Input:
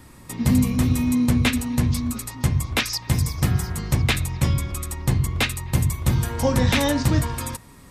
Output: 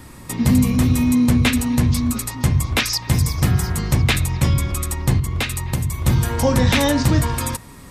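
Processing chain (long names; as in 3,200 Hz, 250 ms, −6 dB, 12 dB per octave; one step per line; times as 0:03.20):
in parallel at +0.5 dB: brickwall limiter −18.5 dBFS, peak gain reduction 10 dB
0:05.19–0:06.05: on the sum: downward compressor, threshold −18 dBFS, peak gain reduction 7 dB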